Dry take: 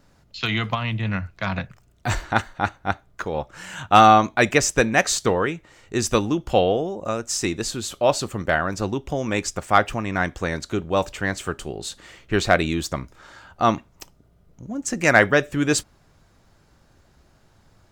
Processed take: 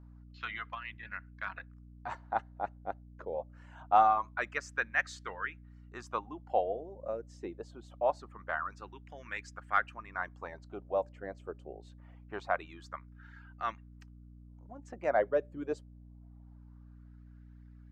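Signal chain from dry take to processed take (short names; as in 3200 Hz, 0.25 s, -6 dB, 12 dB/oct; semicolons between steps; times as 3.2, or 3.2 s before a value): LFO band-pass sine 0.24 Hz 540–1700 Hz; reverb removal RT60 0.89 s; hum 60 Hz, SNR 16 dB; gain -7 dB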